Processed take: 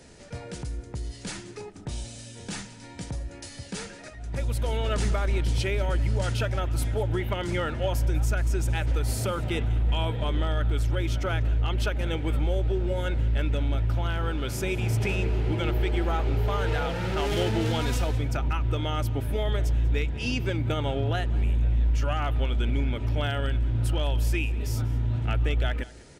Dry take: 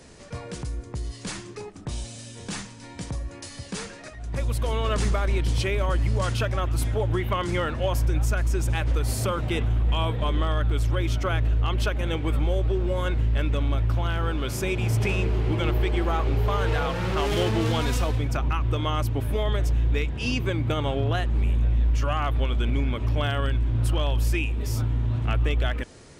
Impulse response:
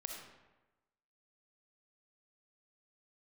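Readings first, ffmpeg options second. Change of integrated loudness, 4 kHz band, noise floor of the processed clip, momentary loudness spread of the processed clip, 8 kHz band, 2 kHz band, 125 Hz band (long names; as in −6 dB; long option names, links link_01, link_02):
−2.0 dB, −2.0 dB, −44 dBFS, 11 LU, −2.0 dB, −2.0 dB, −2.0 dB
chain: -af "asuperstop=centerf=1100:order=4:qfactor=7.4,aecho=1:1:192:0.1,volume=-2dB"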